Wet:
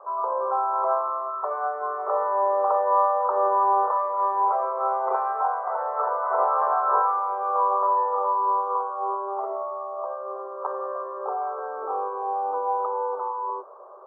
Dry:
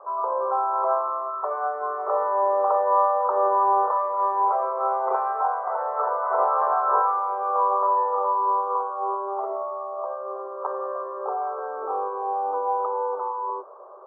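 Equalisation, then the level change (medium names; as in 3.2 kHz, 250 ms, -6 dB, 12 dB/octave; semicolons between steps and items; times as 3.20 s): bass shelf 370 Hz -3.5 dB; 0.0 dB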